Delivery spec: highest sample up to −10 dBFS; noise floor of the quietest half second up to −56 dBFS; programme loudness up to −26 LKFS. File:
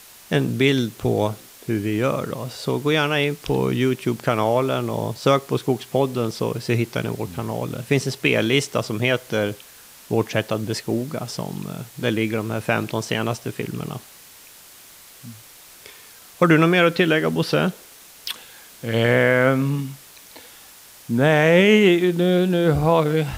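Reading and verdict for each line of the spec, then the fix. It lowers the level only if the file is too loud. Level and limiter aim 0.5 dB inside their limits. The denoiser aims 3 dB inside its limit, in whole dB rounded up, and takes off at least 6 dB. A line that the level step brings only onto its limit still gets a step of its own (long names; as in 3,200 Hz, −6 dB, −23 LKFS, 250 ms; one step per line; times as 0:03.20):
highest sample −5.0 dBFS: out of spec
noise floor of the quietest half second −46 dBFS: out of spec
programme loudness −21.0 LKFS: out of spec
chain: broadband denoise 8 dB, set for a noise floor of −46 dBFS
level −5.5 dB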